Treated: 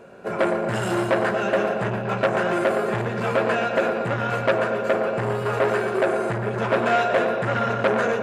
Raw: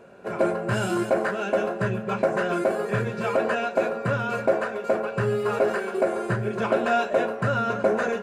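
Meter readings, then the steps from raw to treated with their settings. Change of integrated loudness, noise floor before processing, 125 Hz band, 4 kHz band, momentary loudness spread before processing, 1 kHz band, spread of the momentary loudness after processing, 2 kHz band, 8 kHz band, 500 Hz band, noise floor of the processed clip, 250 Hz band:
+2.5 dB, -35 dBFS, +1.0 dB, +4.5 dB, 3 LU, +3.5 dB, 4 LU, +4.0 dB, no reading, +2.0 dB, -28 dBFS, +1.5 dB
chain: bucket-brigade echo 117 ms, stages 4096, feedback 73%, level -8.5 dB; transformer saturation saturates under 1.3 kHz; trim +3.5 dB

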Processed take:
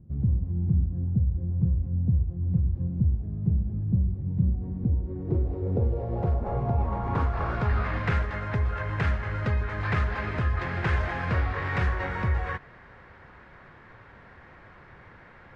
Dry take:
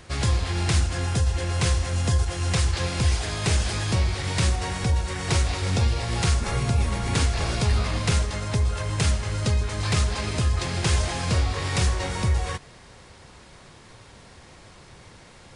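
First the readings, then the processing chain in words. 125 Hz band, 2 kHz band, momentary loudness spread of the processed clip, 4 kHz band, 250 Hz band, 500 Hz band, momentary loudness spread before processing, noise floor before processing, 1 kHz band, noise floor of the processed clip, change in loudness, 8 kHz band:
-2.5 dB, -2.5 dB, 3 LU, -19.0 dB, -0.5 dB, -3.0 dB, 2 LU, -49 dBFS, -2.0 dB, -51 dBFS, -3.0 dB, under -30 dB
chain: low-pass sweep 190 Hz -> 1.7 kHz, 4.39–7.92 s; trim -3.5 dB

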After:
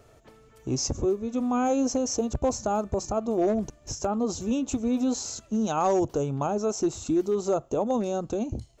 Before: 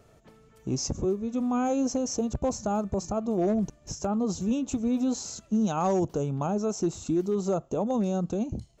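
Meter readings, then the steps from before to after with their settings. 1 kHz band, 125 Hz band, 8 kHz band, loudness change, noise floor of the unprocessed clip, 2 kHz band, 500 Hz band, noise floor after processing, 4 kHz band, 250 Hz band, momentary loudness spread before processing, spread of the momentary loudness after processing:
+3.0 dB, -2.0 dB, no reading, +1.0 dB, -58 dBFS, +3.0 dB, +2.5 dB, -56 dBFS, +3.0 dB, 0.0 dB, 5 LU, 6 LU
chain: peaking EQ 180 Hz -11.5 dB 0.44 oct; trim +3 dB

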